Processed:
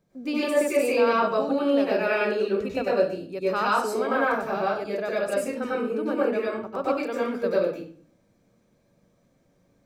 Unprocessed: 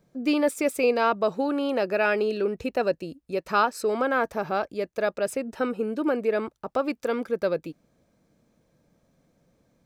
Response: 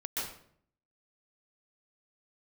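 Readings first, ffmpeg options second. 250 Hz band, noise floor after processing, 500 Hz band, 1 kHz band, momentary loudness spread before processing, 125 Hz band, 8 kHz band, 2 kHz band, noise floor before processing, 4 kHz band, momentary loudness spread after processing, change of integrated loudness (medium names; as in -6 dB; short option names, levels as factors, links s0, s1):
+0.5 dB, -66 dBFS, +1.5 dB, +0.5 dB, 7 LU, +1.0 dB, +0.5 dB, +0.5 dB, -70 dBFS, +1.0 dB, 6 LU, +1.0 dB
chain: -filter_complex "[1:a]atrim=start_sample=2205,asetrate=57330,aresample=44100[s0];[0:a][s0]afir=irnorm=-1:irlink=0"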